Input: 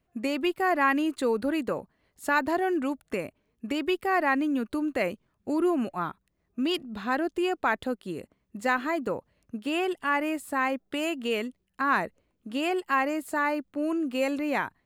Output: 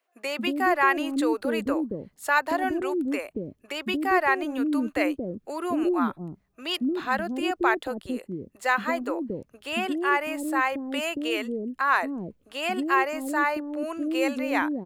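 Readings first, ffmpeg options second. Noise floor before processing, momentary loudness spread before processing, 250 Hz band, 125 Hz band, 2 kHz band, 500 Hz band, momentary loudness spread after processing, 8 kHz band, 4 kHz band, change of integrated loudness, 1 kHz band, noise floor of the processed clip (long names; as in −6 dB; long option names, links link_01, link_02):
−75 dBFS, 11 LU, +1.5 dB, +2.5 dB, +3.0 dB, +0.5 dB, 10 LU, +3.0 dB, +3.0 dB, +2.0 dB, +2.5 dB, −67 dBFS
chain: -filter_complex "[0:a]acrossover=split=440[link_01][link_02];[link_01]adelay=230[link_03];[link_03][link_02]amix=inputs=2:normalize=0,volume=3dB"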